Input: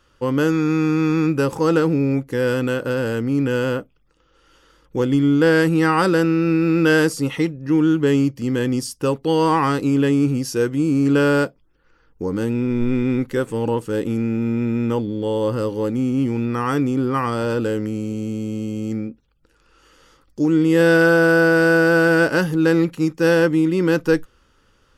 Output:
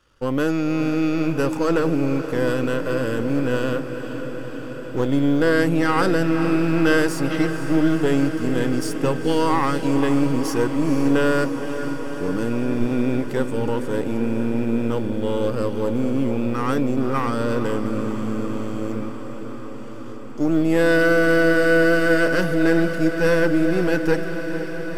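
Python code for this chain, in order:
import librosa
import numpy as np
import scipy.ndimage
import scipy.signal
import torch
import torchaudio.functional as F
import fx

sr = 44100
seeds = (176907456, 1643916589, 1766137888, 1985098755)

y = np.where(x < 0.0, 10.0 ** (-7.0 / 20.0) * x, x)
y = fx.quant_float(y, sr, bits=6)
y = fx.echo_diffused(y, sr, ms=488, feedback_pct=77, wet_db=-10)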